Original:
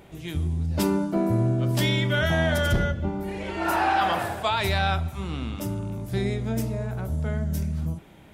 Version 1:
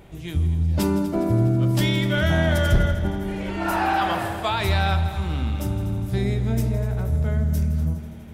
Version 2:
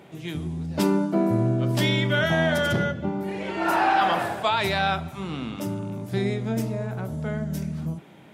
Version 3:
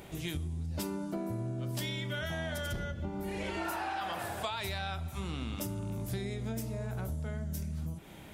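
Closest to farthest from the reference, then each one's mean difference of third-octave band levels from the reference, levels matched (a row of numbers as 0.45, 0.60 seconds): 2, 1, 3; 1.5, 2.5, 4.5 decibels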